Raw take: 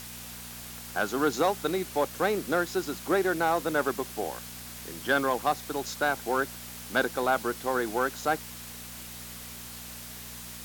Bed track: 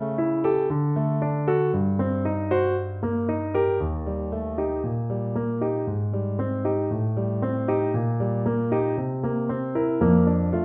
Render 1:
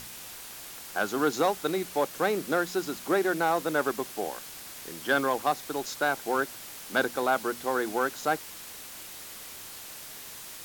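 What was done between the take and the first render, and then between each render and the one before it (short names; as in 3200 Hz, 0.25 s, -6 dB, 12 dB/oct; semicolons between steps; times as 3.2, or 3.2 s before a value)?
de-hum 60 Hz, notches 4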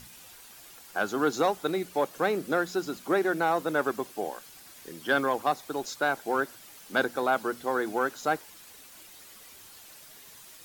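denoiser 9 dB, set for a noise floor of -44 dBFS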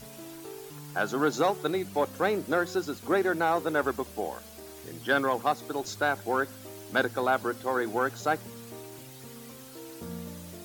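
add bed track -21.5 dB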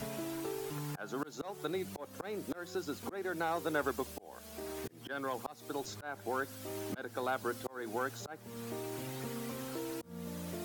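auto swell 0.768 s; three-band squash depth 70%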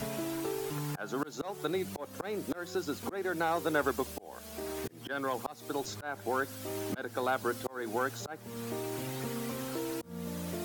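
gain +4 dB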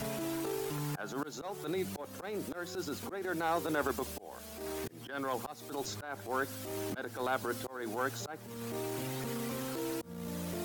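transient shaper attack -11 dB, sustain +1 dB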